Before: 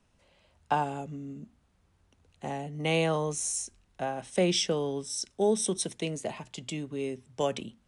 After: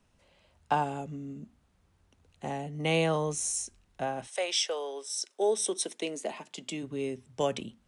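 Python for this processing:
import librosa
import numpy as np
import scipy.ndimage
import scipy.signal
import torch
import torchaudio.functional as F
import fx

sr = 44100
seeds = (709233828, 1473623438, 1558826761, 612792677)

y = fx.highpass(x, sr, hz=fx.line((4.26, 630.0), (6.82, 180.0)), slope=24, at=(4.26, 6.82), fade=0.02)
y = np.clip(y, -10.0 ** (-15.0 / 20.0), 10.0 ** (-15.0 / 20.0))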